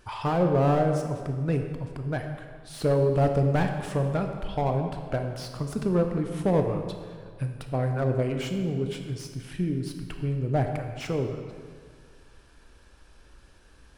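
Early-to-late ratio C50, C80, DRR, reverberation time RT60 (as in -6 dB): 6.0 dB, 7.0 dB, 4.5 dB, 2.0 s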